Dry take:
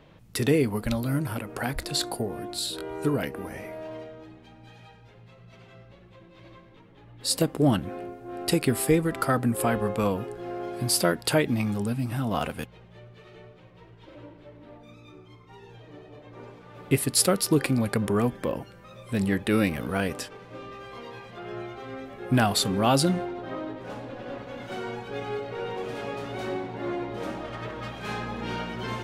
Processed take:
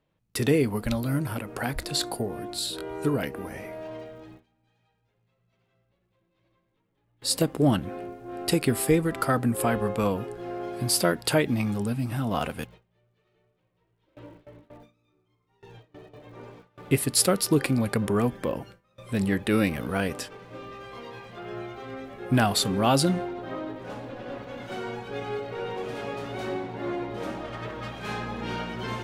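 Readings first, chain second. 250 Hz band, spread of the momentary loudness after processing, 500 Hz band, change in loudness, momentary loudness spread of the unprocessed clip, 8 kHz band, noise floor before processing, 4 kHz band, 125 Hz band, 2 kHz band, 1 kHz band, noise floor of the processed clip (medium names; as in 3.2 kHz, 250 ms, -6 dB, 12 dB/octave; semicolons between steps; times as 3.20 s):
0.0 dB, 16 LU, 0.0 dB, 0.0 dB, 18 LU, 0.0 dB, -52 dBFS, 0.0 dB, 0.0 dB, 0.0 dB, 0.0 dB, -73 dBFS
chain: crackle 160 per s -56 dBFS; gate with hold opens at -37 dBFS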